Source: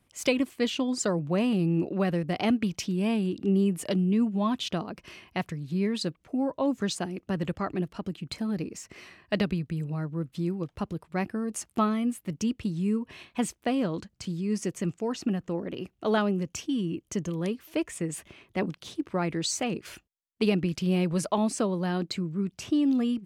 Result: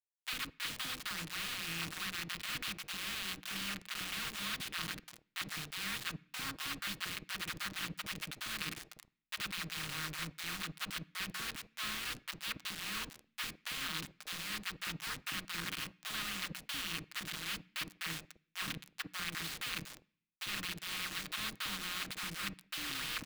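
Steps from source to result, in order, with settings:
compressing power law on the bin magnitudes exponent 0.16
flat-topped bell 550 Hz −14 dB
mains-hum notches 60/120/180/240 Hz
comb filter 6.4 ms, depth 75%
reversed playback
downward compressor 12 to 1, threshold −34 dBFS, peak gain reduction 17 dB
reversed playback
low-pass filter 4,100 Hz 24 dB per octave
bit reduction 7 bits
multiband delay without the direct sound highs, lows 50 ms, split 610 Hz
on a send at −16 dB: convolution reverb RT60 0.55 s, pre-delay 3 ms
on the sum: level +1.5 dB

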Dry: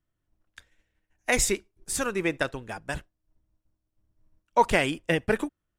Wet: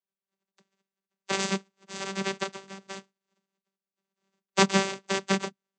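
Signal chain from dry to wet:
compressing power law on the bin magnitudes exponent 0.12
channel vocoder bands 16, saw 194 Hz
multiband upward and downward expander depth 40%

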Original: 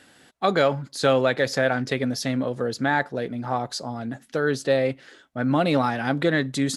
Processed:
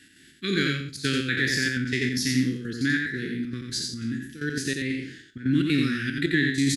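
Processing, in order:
peak hold with a decay on every bin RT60 0.55 s
elliptic band-stop filter 350–1,700 Hz, stop band 60 dB
gate pattern "x.xx.xxxxx." 187 BPM −12 dB
single-tap delay 87 ms −3.5 dB

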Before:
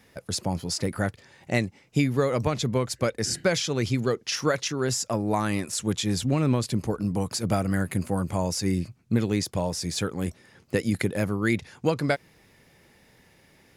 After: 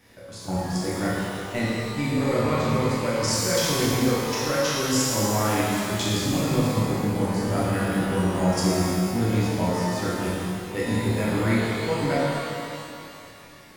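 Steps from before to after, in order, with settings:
transient designer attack −9 dB, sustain −5 dB
output level in coarse steps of 15 dB
flutter between parallel walls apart 4.6 metres, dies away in 0.25 s
reverb with rising layers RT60 2.5 s, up +12 semitones, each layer −8 dB, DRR −7 dB

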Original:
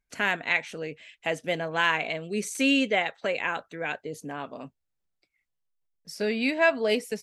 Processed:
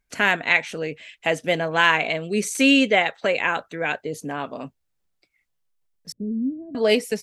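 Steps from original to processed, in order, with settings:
0:06.12–0:06.75: inverse Chebyshev low-pass filter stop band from 1,200 Hz, stop band 70 dB
level +6.5 dB

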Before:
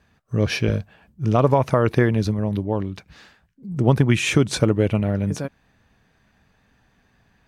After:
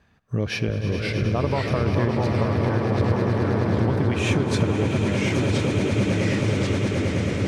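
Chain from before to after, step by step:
high-shelf EQ 7,200 Hz −7.5 dB
echo that builds up and dies away 106 ms, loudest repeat 8, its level −11 dB
downward compressor, threshold −20 dBFS, peak gain reduction 10 dB
delay with pitch and tempo change per echo 464 ms, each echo −2 semitones, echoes 2

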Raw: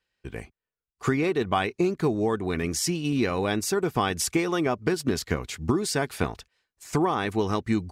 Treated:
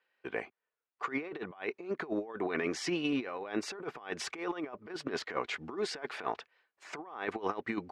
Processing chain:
band-pass filter 470–2,200 Hz
compressor whose output falls as the input rises −35 dBFS, ratio −0.5

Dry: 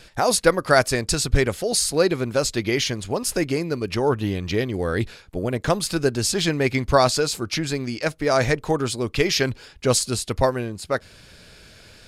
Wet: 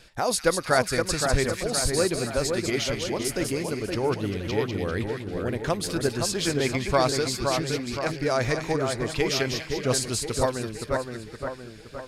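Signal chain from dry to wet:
echo with a time of its own for lows and highs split 1,900 Hz, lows 518 ms, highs 198 ms, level −4.5 dB
level −5.5 dB

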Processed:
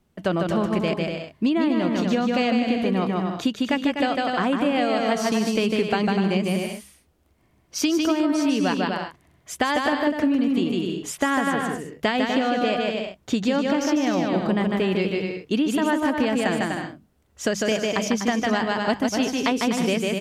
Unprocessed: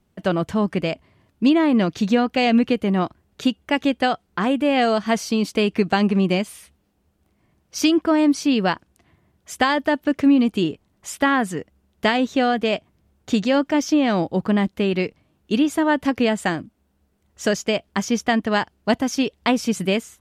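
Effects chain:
mains-hum notches 50/100/150/200 Hz
on a send: bouncing-ball delay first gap 150 ms, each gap 0.65×, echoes 5
on the sum: downward compressor, threshold −18 dBFS, peak gain reduction 8.5 dB

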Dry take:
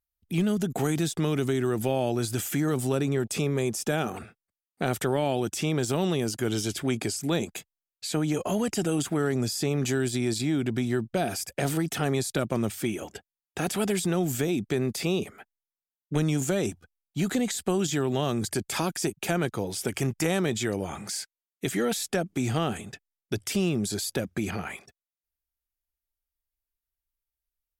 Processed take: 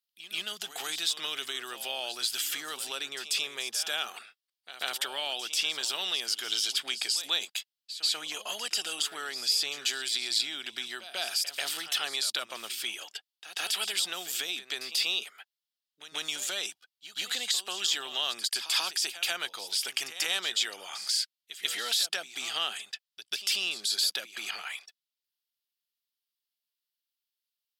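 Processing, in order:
high-pass filter 1,300 Hz 12 dB per octave
flat-topped bell 3,800 Hz +9.5 dB 1.1 octaves
backwards echo 139 ms −12.5 dB

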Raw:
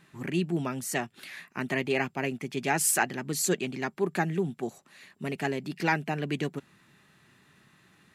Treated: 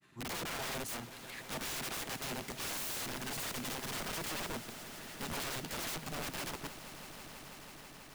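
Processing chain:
granular cloud 100 ms, grains 21 per second
wrap-around overflow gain 32.5 dB
echo that builds up and dies away 163 ms, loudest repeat 5, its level −17 dB
level −2.5 dB

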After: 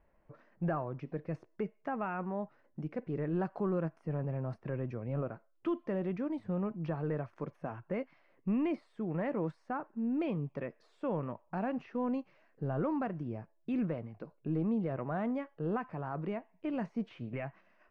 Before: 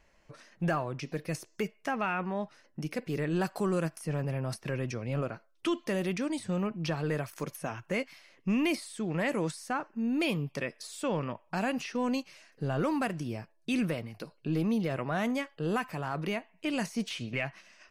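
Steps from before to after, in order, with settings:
low-pass filter 1,200 Hz 12 dB per octave
level −3 dB

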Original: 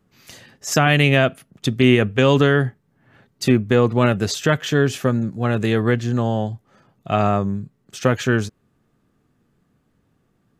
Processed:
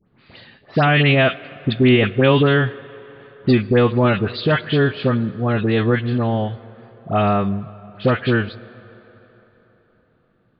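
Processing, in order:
Butterworth low-pass 4,500 Hz 96 dB per octave
all-pass dispersion highs, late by 74 ms, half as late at 1,500 Hz
convolution reverb RT60 4.2 s, pre-delay 7 ms, DRR 17 dB
level +1 dB

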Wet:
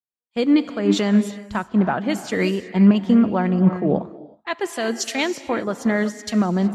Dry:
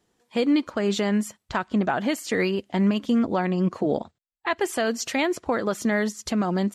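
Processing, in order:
high-shelf EQ 7,700 Hz −7 dB
reverb whose tail is shaped and stops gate 400 ms rising, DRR 9 dB
dynamic equaliser 150 Hz, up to +5 dB, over −35 dBFS, Q 1.2
multiband upward and downward expander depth 100%
level +2 dB

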